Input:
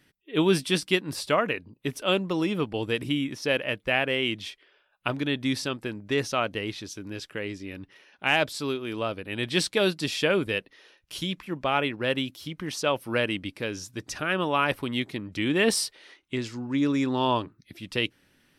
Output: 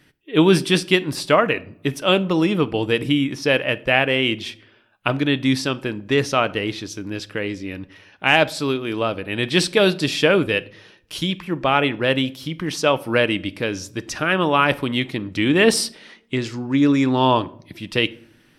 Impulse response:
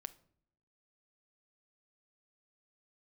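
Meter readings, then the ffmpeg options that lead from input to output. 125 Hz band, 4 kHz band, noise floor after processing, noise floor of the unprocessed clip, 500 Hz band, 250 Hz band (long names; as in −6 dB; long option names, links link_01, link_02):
+8.5 dB, +6.5 dB, −55 dBFS, −67 dBFS, +7.5 dB, +8.0 dB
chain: -filter_complex "[0:a]asplit=2[link_01][link_02];[1:a]atrim=start_sample=2205,highshelf=frequency=6000:gain=-6[link_03];[link_02][link_03]afir=irnorm=-1:irlink=0,volume=15.5dB[link_04];[link_01][link_04]amix=inputs=2:normalize=0,volume=-5.5dB"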